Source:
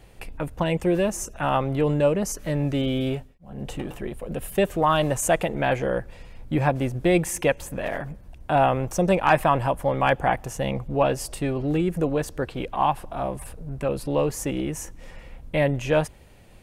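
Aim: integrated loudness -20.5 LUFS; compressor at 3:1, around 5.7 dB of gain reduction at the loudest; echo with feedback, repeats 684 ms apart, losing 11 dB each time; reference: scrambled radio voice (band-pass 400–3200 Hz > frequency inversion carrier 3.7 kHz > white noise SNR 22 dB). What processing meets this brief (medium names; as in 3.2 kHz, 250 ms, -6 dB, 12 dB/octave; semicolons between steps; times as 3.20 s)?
compression 3:1, threshold -22 dBFS; band-pass 400–3200 Hz; feedback delay 684 ms, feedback 28%, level -11 dB; frequency inversion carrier 3.7 kHz; white noise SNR 22 dB; trim +7 dB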